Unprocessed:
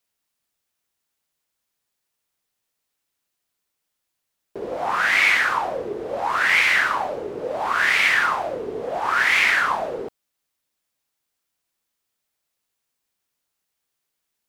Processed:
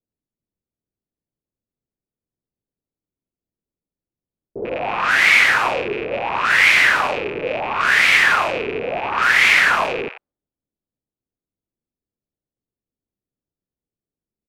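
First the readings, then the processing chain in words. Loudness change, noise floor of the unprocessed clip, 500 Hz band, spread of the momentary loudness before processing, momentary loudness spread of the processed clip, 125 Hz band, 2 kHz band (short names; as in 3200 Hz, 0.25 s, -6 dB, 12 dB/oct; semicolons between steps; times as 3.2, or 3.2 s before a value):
+4.5 dB, -80 dBFS, +3.5 dB, 14 LU, 13 LU, +7.0 dB, +4.5 dB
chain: rattling part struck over -49 dBFS, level -19 dBFS; bands offset in time lows, highs 90 ms, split 870 Hz; low-pass opened by the level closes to 340 Hz, open at -18.5 dBFS; gain +5 dB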